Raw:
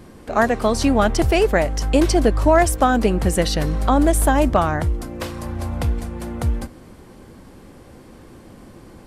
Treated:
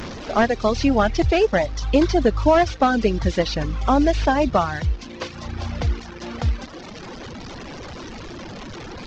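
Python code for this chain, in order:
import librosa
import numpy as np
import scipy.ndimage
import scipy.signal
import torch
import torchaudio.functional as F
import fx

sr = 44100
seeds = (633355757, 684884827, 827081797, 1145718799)

y = fx.delta_mod(x, sr, bps=32000, step_db=-25.5)
y = fx.dereverb_blind(y, sr, rt60_s=1.6)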